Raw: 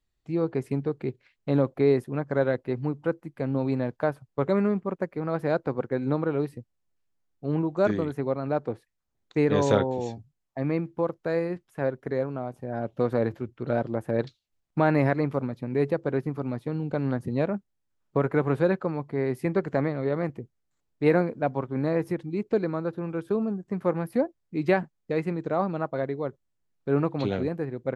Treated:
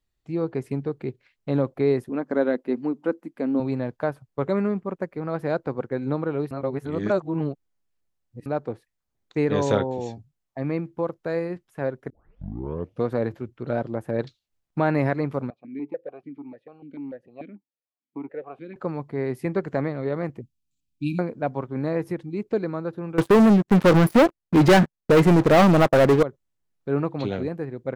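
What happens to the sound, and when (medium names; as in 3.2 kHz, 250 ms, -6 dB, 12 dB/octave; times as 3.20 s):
2.09–3.60 s: resonant low shelf 170 Hz -11 dB, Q 3
6.51–8.46 s: reverse
12.10 s: tape start 0.95 s
15.50–18.76 s: stepped vowel filter 6.8 Hz
20.41–21.19 s: brick-wall FIR band-stop 320–2300 Hz
23.18–26.23 s: waveshaping leveller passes 5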